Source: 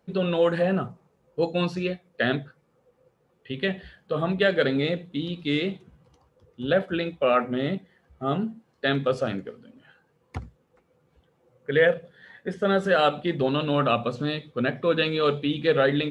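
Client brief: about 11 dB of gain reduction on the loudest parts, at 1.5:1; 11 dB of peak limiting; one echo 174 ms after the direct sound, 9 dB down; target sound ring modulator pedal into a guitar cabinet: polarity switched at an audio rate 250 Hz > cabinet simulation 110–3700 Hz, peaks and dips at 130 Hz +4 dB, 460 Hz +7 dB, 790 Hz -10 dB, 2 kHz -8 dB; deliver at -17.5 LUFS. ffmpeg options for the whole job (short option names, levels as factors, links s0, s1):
-af "acompressor=threshold=0.00398:ratio=1.5,alimiter=level_in=1.88:limit=0.0631:level=0:latency=1,volume=0.531,aecho=1:1:174:0.355,aeval=exprs='val(0)*sgn(sin(2*PI*250*n/s))':c=same,highpass=110,equalizer=f=130:t=q:w=4:g=4,equalizer=f=460:t=q:w=4:g=7,equalizer=f=790:t=q:w=4:g=-10,equalizer=f=2000:t=q:w=4:g=-8,lowpass=f=3700:w=0.5412,lowpass=f=3700:w=1.3066,volume=14.1"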